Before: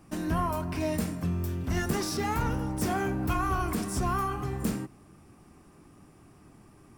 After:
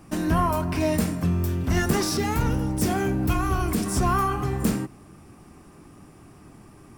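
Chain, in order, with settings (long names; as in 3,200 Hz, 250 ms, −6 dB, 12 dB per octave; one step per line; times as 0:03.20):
0:02.18–0:03.86: parametric band 1,100 Hz −6 dB 1.7 octaves
level +6.5 dB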